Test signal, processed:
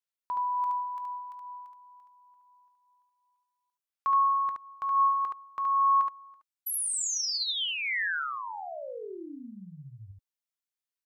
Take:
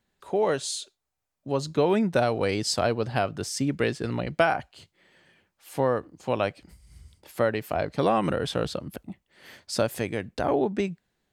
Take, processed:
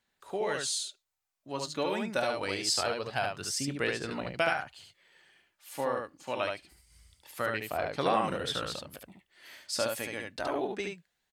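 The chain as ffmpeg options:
-af "tiltshelf=f=670:g=-6.5,aphaser=in_gain=1:out_gain=1:delay=3.6:decay=0.33:speed=0.25:type=sinusoidal,aecho=1:1:21|72:0.158|0.668,volume=-8.5dB"

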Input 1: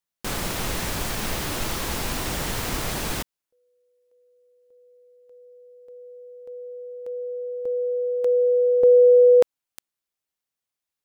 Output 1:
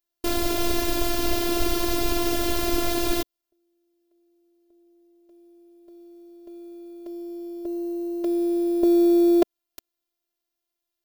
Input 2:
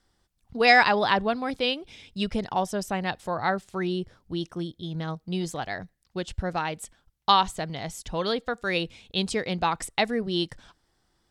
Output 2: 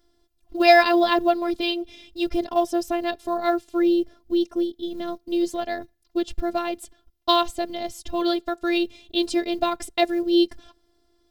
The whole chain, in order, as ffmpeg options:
-af "acrusher=bits=8:mode=log:mix=0:aa=0.000001,afftfilt=real='hypot(re,im)*cos(PI*b)':imag='0':win_size=512:overlap=0.75,equalizer=f=250:t=o:w=1:g=3,equalizer=f=500:t=o:w=1:g=5,equalizer=f=1k:t=o:w=1:g=-5,equalizer=f=2k:t=o:w=1:g=-6,equalizer=f=8k:t=o:w=1:g=-7,volume=8dB"

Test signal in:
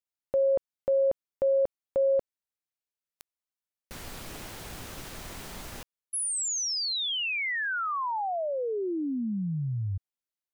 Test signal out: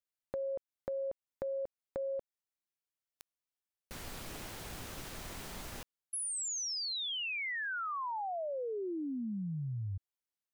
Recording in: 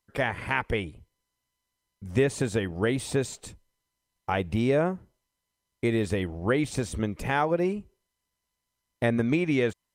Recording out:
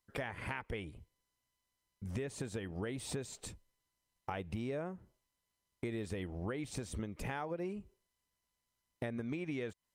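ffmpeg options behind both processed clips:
-af "acompressor=threshold=-32dB:ratio=6:attack=9:release=241:knee=1:detection=rms,volume=-3.5dB"

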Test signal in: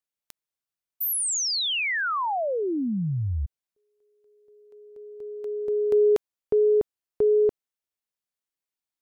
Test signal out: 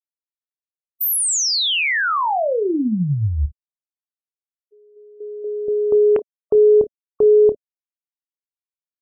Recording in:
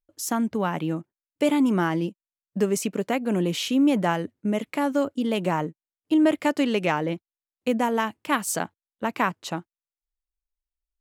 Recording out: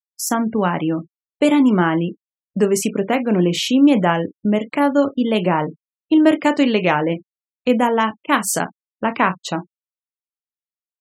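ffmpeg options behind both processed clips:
-af "aecho=1:1:28|54:0.316|0.141,agate=range=-7dB:threshold=-43dB:ratio=16:release=143:detection=peak,afftfilt=real='re*gte(hypot(re,im),0.0112)':imag='im*gte(hypot(re,im),0.0112)':win_size=1024:overlap=0.75,volume=6.5dB"

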